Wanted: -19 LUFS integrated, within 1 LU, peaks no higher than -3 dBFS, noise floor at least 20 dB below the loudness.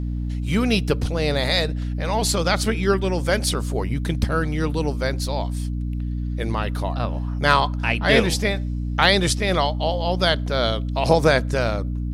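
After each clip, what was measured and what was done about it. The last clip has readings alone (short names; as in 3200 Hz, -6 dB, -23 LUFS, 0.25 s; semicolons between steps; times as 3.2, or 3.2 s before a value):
hum 60 Hz; harmonics up to 300 Hz; hum level -23 dBFS; loudness -22.0 LUFS; peak -1.5 dBFS; loudness target -19.0 LUFS
-> de-hum 60 Hz, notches 5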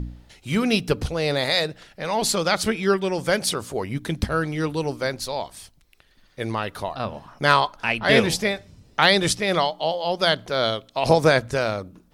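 hum none; loudness -22.5 LUFS; peak -2.0 dBFS; loudness target -19.0 LUFS
-> gain +3.5 dB; limiter -3 dBFS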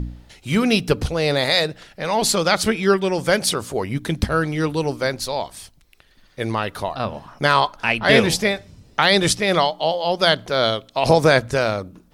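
loudness -19.5 LUFS; peak -3.0 dBFS; noise floor -54 dBFS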